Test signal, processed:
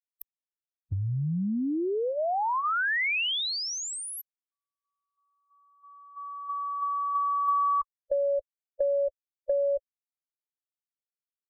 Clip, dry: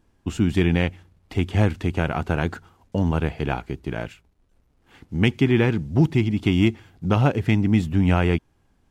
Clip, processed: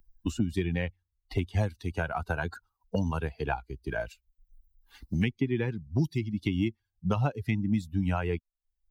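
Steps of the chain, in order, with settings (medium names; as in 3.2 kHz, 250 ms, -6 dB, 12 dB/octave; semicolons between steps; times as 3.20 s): expander on every frequency bin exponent 2; three bands compressed up and down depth 100%; trim -4 dB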